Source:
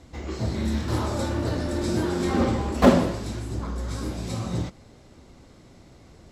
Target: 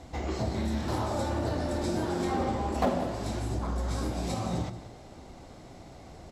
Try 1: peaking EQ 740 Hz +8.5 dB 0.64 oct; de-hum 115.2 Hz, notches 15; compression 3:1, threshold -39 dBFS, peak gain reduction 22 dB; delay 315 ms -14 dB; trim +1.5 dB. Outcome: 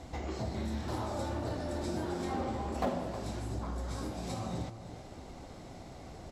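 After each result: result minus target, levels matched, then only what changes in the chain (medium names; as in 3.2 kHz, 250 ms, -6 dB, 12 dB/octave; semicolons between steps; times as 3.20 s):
echo 135 ms late; compression: peak gain reduction +5.5 dB
change: delay 180 ms -14 dB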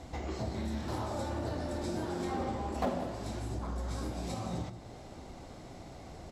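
compression: peak gain reduction +5.5 dB
change: compression 3:1, threshold -30.5 dBFS, peak gain reduction 16.5 dB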